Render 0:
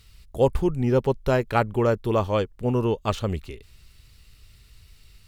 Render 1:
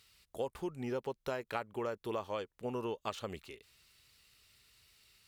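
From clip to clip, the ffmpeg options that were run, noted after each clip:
-af "highpass=f=570:p=1,acompressor=threshold=0.0398:ratio=5,volume=0.501"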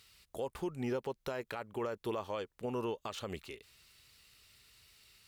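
-af "alimiter=level_in=2.11:limit=0.0631:level=0:latency=1:release=71,volume=0.473,volume=1.41"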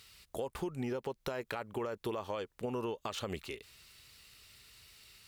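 -af "acompressor=threshold=0.0126:ratio=6,volume=1.68"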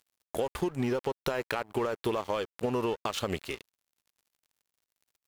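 -af "aeval=exprs='sgn(val(0))*max(abs(val(0))-0.00316,0)':c=same,volume=2.66"

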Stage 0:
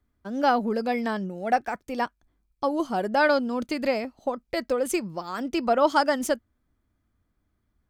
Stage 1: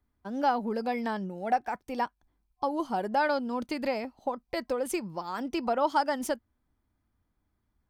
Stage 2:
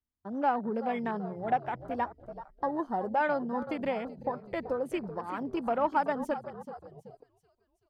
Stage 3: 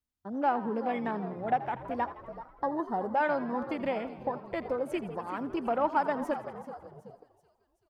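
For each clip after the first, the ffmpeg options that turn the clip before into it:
-af "superequalizer=9b=1.78:15b=0.708,acompressor=threshold=0.0562:ratio=1.5,volume=0.668"
-filter_complex "[0:a]asplit=7[s0][s1][s2][s3][s4][s5][s6];[s1]adelay=380,afreqshift=-51,volume=0.237[s7];[s2]adelay=760,afreqshift=-102,volume=0.127[s8];[s3]adelay=1140,afreqshift=-153,volume=0.0692[s9];[s4]adelay=1520,afreqshift=-204,volume=0.0372[s10];[s5]adelay=1900,afreqshift=-255,volume=0.0202[s11];[s6]adelay=2280,afreqshift=-306,volume=0.0108[s12];[s0][s7][s8][s9][s10][s11][s12]amix=inputs=7:normalize=0,afwtdn=0.0112,volume=0.841"
-filter_complex "[0:a]asplit=8[s0][s1][s2][s3][s4][s5][s6][s7];[s1]adelay=82,afreqshift=57,volume=0.158[s8];[s2]adelay=164,afreqshift=114,volume=0.104[s9];[s3]adelay=246,afreqshift=171,volume=0.0668[s10];[s4]adelay=328,afreqshift=228,volume=0.0437[s11];[s5]adelay=410,afreqshift=285,volume=0.0282[s12];[s6]adelay=492,afreqshift=342,volume=0.0184[s13];[s7]adelay=574,afreqshift=399,volume=0.0119[s14];[s0][s8][s9][s10][s11][s12][s13][s14]amix=inputs=8:normalize=0"

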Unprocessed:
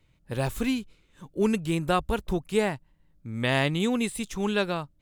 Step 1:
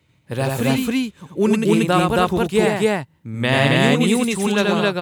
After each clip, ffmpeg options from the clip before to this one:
-filter_complex "[0:a]highpass=f=78:w=0.5412,highpass=f=78:w=1.3066,asplit=2[s0][s1];[s1]aecho=0:1:87.46|271.1:0.708|1[s2];[s0][s2]amix=inputs=2:normalize=0,volume=2"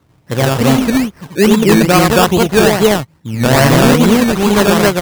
-af "acrusher=samples=17:mix=1:aa=0.000001:lfo=1:lforange=10.2:lforate=2.4,aeval=exprs='0.335*(abs(mod(val(0)/0.335+3,4)-2)-1)':c=same,volume=2.51"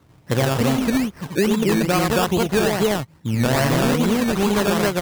-af "acompressor=threshold=0.158:ratio=6"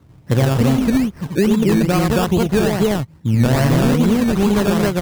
-af "lowshelf=f=310:g=9.5,volume=0.841"

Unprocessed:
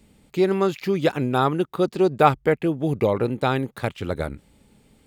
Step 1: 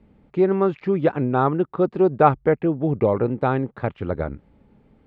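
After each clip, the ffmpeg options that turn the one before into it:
-af "lowpass=1500,volume=1.19"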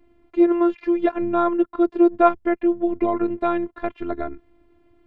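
-af "afftfilt=real='hypot(re,im)*cos(PI*b)':imag='0':win_size=512:overlap=0.75,volume=1.5"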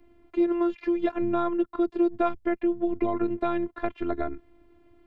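-filter_complex "[0:a]acrossover=split=210|3000[s0][s1][s2];[s1]acompressor=threshold=0.0501:ratio=3[s3];[s0][s3][s2]amix=inputs=3:normalize=0"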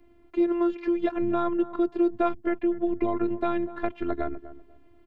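-filter_complex "[0:a]asplit=2[s0][s1];[s1]adelay=246,lowpass=f=940:p=1,volume=0.211,asplit=2[s2][s3];[s3]adelay=246,lowpass=f=940:p=1,volume=0.25,asplit=2[s4][s5];[s5]adelay=246,lowpass=f=940:p=1,volume=0.25[s6];[s0][s2][s4][s6]amix=inputs=4:normalize=0"

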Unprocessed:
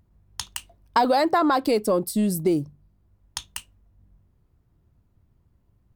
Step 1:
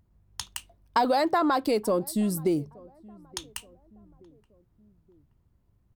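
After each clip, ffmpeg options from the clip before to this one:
-filter_complex "[0:a]asplit=2[s0][s1];[s1]adelay=875,lowpass=f=810:p=1,volume=0.0708,asplit=2[s2][s3];[s3]adelay=875,lowpass=f=810:p=1,volume=0.52,asplit=2[s4][s5];[s5]adelay=875,lowpass=f=810:p=1,volume=0.52[s6];[s0][s2][s4][s6]amix=inputs=4:normalize=0,volume=0.668"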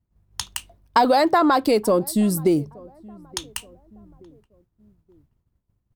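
-af "agate=range=0.0224:threshold=0.00158:ratio=3:detection=peak,volume=2.11"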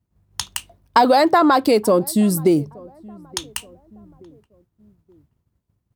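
-af "highpass=63,volume=1.41"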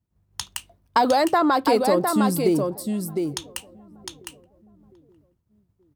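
-af "aecho=1:1:707:0.562,volume=0.562"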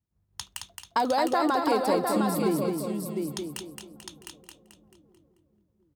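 -af "aecho=1:1:219|438|657|876|1095:0.596|0.262|0.115|0.0507|0.0223,volume=0.473"

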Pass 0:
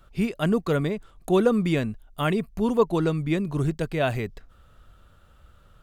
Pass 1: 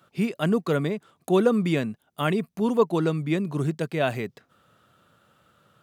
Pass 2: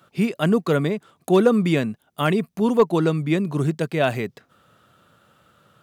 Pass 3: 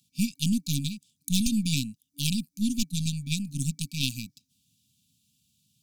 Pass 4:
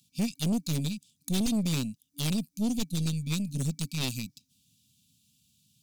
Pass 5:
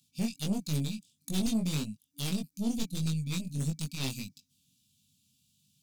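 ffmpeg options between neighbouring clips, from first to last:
-af "highpass=f=130:w=0.5412,highpass=f=130:w=1.3066"
-af "asoftclip=type=hard:threshold=0.282,volume=1.58"
-af "aeval=exprs='0.447*(cos(1*acos(clip(val(0)/0.447,-1,1)))-cos(1*PI/2))+0.112*(cos(2*acos(clip(val(0)/0.447,-1,1)))-cos(2*PI/2))+0.0355*(cos(3*acos(clip(val(0)/0.447,-1,1)))-cos(3*PI/2))+0.0251*(cos(7*acos(clip(val(0)/0.447,-1,1)))-cos(7*PI/2))':c=same,highshelf=f=3700:t=q:w=1.5:g=11.5,afftfilt=real='re*(1-between(b*sr/4096,290,2300))':imag='im*(1-between(b*sr/4096,290,2300))':win_size=4096:overlap=0.75,volume=0.668"
-af "asoftclip=type=tanh:threshold=0.0531,volume=1.33"
-af "flanger=delay=19.5:depth=3:speed=1.6"

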